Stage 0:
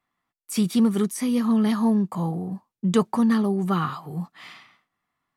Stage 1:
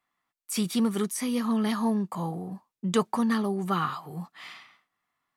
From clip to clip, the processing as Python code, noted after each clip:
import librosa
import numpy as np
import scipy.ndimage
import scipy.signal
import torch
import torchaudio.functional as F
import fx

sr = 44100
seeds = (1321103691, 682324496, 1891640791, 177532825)

y = fx.low_shelf(x, sr, hz=390.0, db=-8.0)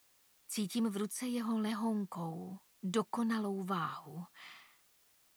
y = fx.quant_dither(x, sr, seeds[0], bits=10, dither='triangular')
y = y * librosa.db_to_amplitude(-9.0)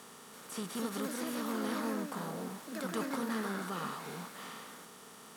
y = fx.bin_compress(x, sr, power=0.4)
y = fx.echo_pitch(y, sr, ms=336, semitones=3, count=2, db_per_echo=-3.0)
y = y * librosa.db_to_amplitude(-7.0)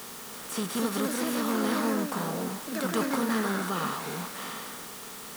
y = fx.dmg_noise_colour(x, sr, seeds[1], colour='white', level_db=-53.0)
y = y * librosa.db_to_amplitude(8.0)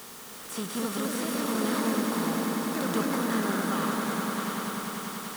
y = fx.echo_swell(x, sr, ms=98, loudest=5, wet_db=-9)
y = y * librosa.db_to_amplitude(-2.5)